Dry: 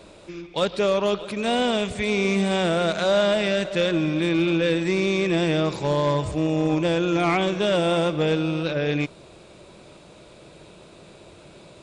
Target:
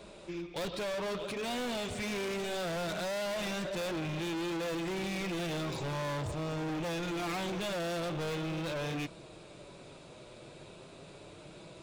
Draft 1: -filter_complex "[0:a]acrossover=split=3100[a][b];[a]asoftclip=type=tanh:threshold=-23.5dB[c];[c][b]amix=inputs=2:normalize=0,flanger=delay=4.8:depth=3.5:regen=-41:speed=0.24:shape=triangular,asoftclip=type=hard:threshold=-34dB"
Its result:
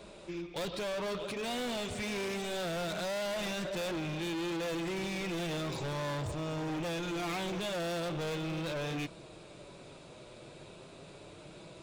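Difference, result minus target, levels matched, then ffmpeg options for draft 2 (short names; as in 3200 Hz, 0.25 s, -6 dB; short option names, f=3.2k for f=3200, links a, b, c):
soft clip: distortion +16 dB
-filter_complex "[0:a]acrossover=split=3100[a][b];[a]asoftclip=type=tanh:threshold=-12dB[c];[c][b]amix=inputs=2:normalize=0,flanger=delay=4.8:depth=3.5:regen=-41:speed=0.24:shape=triangular,asoftclip=type=hard:threshold=-34dB"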